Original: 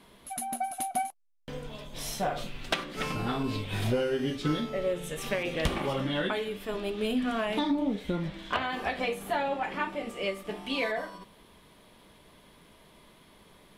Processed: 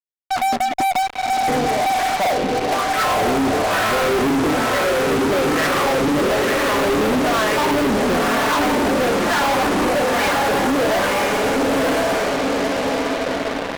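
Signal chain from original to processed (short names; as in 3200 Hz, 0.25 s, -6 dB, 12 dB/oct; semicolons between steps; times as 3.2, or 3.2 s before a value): wah 1.1 Hz 320–1600 Hz, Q 2.4; in parallel at -4 dB: bit-crush 6-bit; on the sum: compressor, threshold -35 dBFS, peak gain reduction 11.5 dB; air absorption 330 m; on a send: diffused feedback echo 0.995 s, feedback 52%, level -3 dB; on the sum: fuzz box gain 55 dB, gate -55 dBFS; gain -3 dB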